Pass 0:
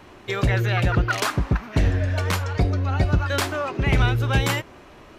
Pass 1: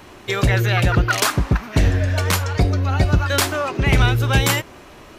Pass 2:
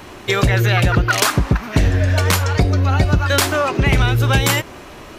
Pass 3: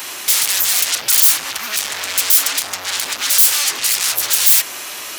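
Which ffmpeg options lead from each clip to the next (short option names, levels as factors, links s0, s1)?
-af "highshelf=f=5100:g=8.5,volume=1.5"
-af "acompressor=threshold=0.141:ratio=4,volume=1.88"
-af "aeval=exprs='0.841*(cos(1*acos(clip(val(0)/0.841,-1,1)))-cos(1*PI/2))+0.237*(cos(5*acos(clip(val(0)/0.841,-1,1)))-cos(5*PI/2))':c=same,aeval=exprs='1*sin(PI/2*7.08*val(0)/1)':c=same,aderivative,volume=0.422"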